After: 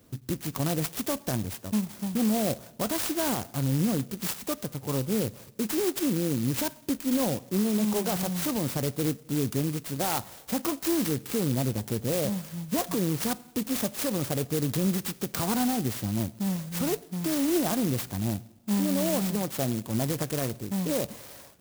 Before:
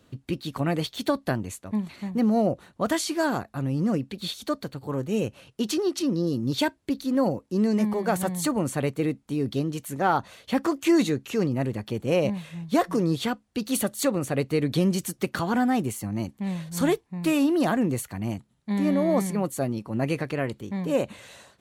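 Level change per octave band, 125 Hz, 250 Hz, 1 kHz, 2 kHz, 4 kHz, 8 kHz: -0.5, -3.0, -5.5, -5.0, -1.0, +3.0 dB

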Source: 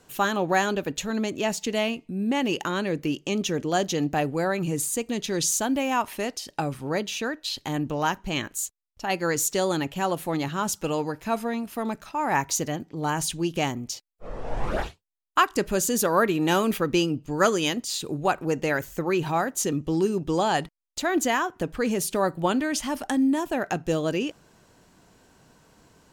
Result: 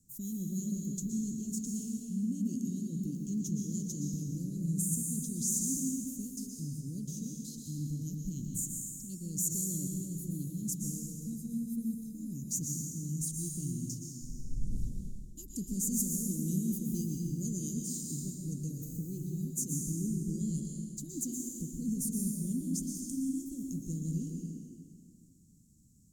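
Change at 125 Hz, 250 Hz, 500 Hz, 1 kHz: -2.5 dB, -7.0 dB, -26.5 dB, under -40 dB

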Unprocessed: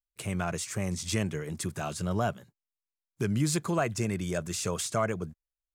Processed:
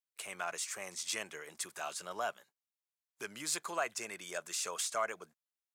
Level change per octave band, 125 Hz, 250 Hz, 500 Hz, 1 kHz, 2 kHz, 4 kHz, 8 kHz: -31.5, -21.5, -9.0, -4.5, -2.5, -2.5, -2.5 dB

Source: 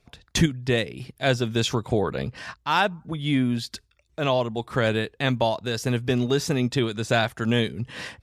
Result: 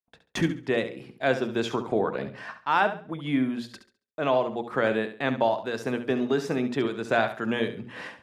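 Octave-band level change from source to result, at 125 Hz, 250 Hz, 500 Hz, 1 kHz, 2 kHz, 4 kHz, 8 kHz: -10.5 dB, -2.5 dB, -0.5 dB, 0.0 dB, -2.0 dB, -9.0 dB, under -10 dB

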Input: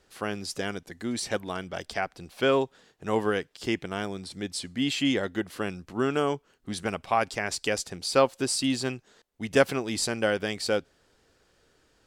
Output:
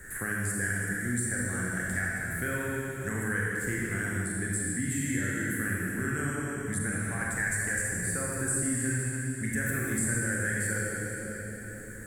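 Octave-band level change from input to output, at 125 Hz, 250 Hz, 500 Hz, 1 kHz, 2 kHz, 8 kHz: +6.5, -2.0, -10.5, -10.0, +4.0, +6.0 dB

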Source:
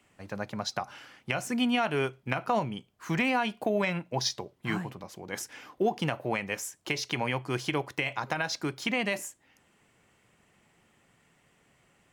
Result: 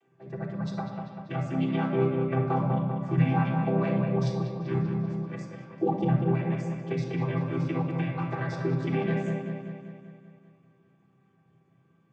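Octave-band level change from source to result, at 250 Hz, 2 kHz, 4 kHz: +5.0, -8.0, -14.0 dB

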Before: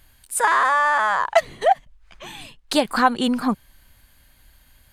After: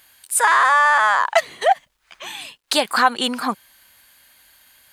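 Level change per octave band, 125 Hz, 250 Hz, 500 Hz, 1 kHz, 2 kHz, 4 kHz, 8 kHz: n/a, -6.0 dB, -0.5 dB, +2.5 dB, +4.5 dB, +5.5 dB, +6.0 dB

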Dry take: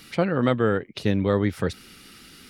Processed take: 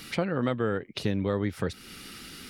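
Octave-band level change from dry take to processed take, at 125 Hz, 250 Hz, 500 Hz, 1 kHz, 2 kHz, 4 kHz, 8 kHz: -5.5, -5.5, -6.0, -6.0, -5.0, -1.5, +0.5 dB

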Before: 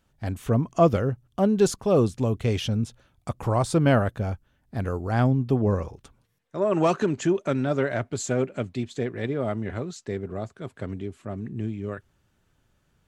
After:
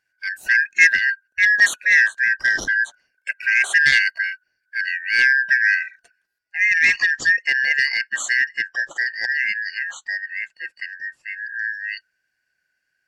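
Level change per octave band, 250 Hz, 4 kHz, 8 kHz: under -20 dB, +11.5 dB, +6.5 dB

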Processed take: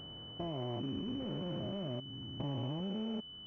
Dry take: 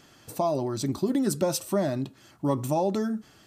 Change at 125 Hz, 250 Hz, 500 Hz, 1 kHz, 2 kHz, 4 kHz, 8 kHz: -7.5 dB, -11.0 dB, -16.0 dB, -16.5 dB, -15.0 dB, -0.5 dB, under -40 dB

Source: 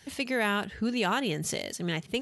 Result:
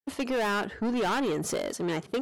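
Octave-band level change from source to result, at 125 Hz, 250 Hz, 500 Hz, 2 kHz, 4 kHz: -3.0, +1.0, +3.5, -2.5, -4.0 dB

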